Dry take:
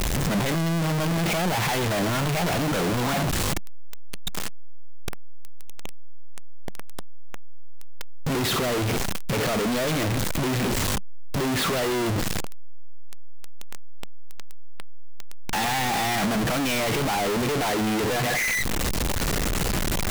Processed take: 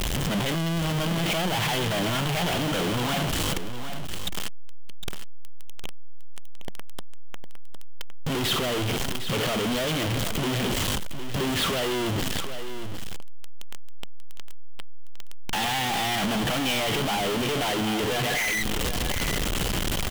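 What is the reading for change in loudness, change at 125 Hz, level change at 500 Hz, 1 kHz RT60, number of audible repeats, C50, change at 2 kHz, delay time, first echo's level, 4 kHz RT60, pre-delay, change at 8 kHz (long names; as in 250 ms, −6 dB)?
−1.5 dB, −2.0 dB, −2.0 dB, no reverb audible, 1, no reverb audible, −1.0 dB, 758 ms, −10.0 dB, no reverb audible, no reverb audible, −2.0 dB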